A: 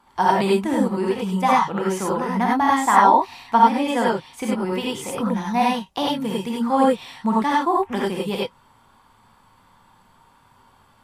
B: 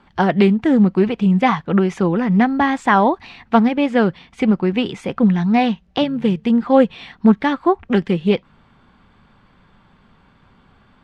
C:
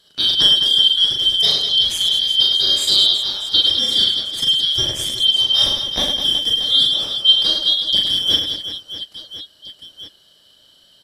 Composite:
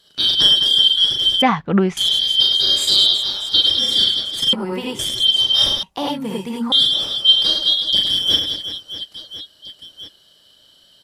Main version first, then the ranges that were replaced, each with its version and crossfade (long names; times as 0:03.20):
C
0:01.42–0:01.97: punch in from B
0:04.53–0:04.99: punch in from A
0:05.83–0:06.72: punch in from A